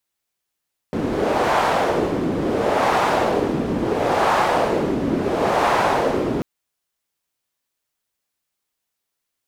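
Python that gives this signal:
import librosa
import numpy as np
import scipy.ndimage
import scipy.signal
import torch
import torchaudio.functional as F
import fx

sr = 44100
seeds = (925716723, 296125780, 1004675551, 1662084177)

y = fx.wind(sr, seeds[0], length_s=5.49, low_hz=290.0, high_hz=860.0, q=1.6, gusts=4, swing_db=4.5)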